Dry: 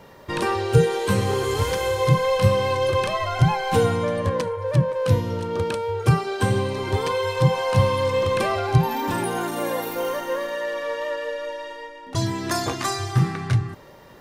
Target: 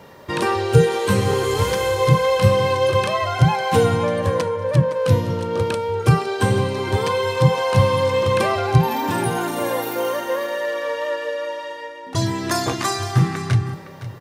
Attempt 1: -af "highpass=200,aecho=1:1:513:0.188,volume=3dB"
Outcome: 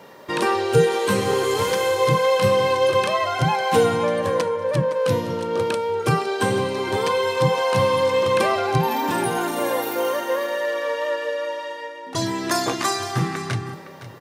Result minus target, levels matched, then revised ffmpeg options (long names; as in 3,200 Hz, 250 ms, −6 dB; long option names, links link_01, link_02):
125 Hz band −6.5 dB
-af "highpass=64,aecho=1:1:513:0.188,volume=3dB"